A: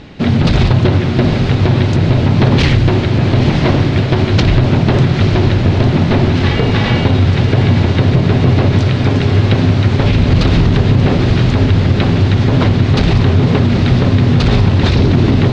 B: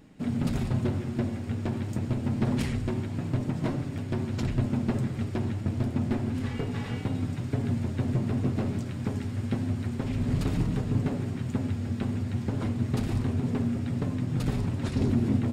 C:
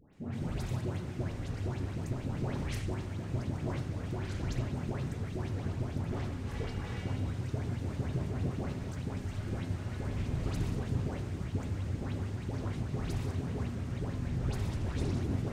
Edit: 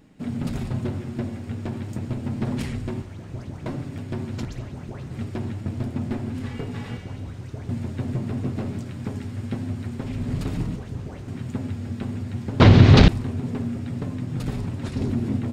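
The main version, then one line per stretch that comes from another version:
B
3.02–3.66 s: from C
4.45–5.11 s: from C
6.97–7.69 s: from C
10.76–11.28 s: from C
12.60–13.08 s: from A

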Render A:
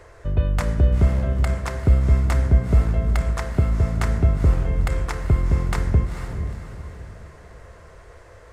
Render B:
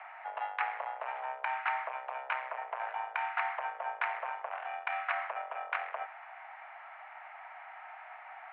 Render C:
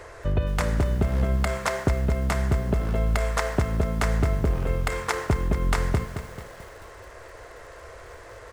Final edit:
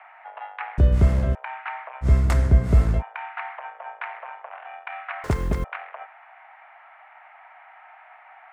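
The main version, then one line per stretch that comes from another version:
B
0.78–1.35 s: from A
2.04–3.00 s: from A, crossfade 0.06 s
5.24–5.64 s: from C

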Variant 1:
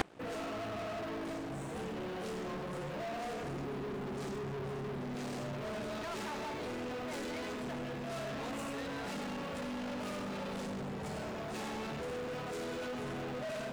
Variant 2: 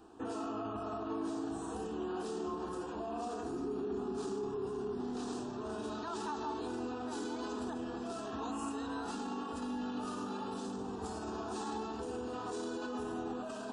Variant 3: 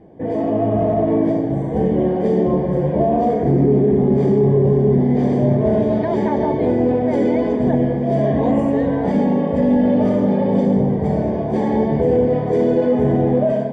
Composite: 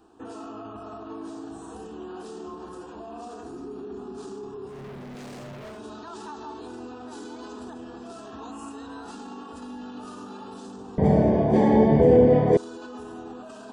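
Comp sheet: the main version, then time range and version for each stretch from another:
2
4.73–5.75 s: from 1, crossfade 0.16 s
10.98–12.57 s: from 3

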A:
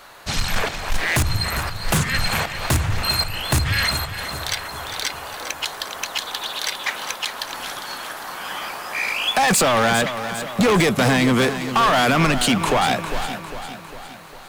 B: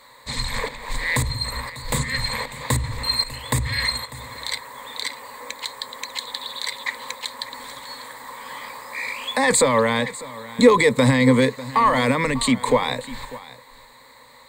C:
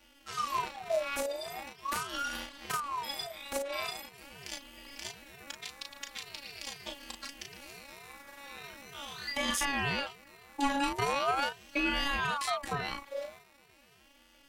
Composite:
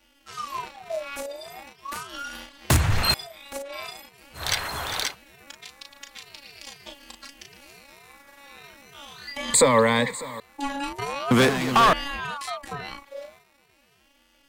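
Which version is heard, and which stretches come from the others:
C
2.70–3.14 s: from A
4.41–5.09 s: from A, crossfade 0.16 s
9.54–10.40 s: from B
11.31–11.93 s: from A

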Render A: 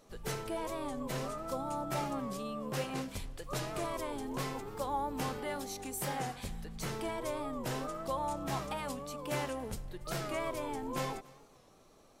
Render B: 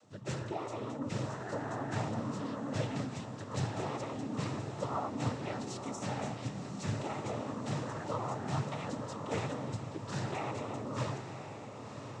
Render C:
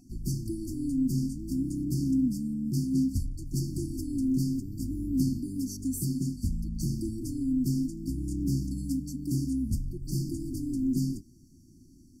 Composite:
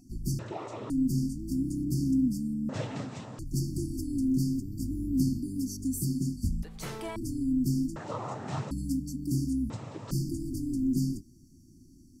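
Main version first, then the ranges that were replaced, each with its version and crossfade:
C
0.39–0.90 s: from B
2.69–3.39 s: from B
6.63–7.16 s: from A
7.96–8.71 s: from B
9.70–10.11 s: from B

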